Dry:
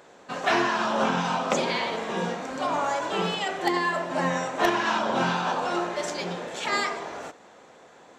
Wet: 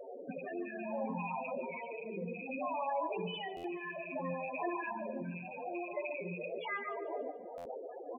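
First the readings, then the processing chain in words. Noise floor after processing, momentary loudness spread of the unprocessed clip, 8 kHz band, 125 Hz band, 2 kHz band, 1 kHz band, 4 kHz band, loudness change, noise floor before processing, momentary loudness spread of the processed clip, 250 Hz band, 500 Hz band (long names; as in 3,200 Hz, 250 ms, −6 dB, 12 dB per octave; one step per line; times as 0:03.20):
−47 dBFS, 8 LU, below −40 dB, −11.5 dB, −15.0 dB, −14.0 dB, −20.0 dB, −13.5 dB, −52 dBFS, 7 LU, −11.5 dB, −10.0 dB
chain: loose part that buzzes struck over −41 dBFS, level −15 dBFS
Chebyshev low-pass filter 4,200 Hz, order 10
notch filter 1,400 Hz, Q 5.6
hum removal 56.14 Hz, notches 4
speech leveller within 3 dB 2 s
brickwall limiter −17.5 dBFS, peak gain reduction 7 dB
downward compressor 12 to 1, threshold −41 dBFS, peak gain reduction 18 dB
rotating-speaker cabinet horn 0.6 Hz, later 5 Hz, at 0:05.84
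spectral peaks only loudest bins 8
on a send: repeating echo 145 ms, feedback 50%, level −15.5 dB
on the sum: buffer that repeats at 0:03.56/0:07.57, samples 512, times 6
level +12 dB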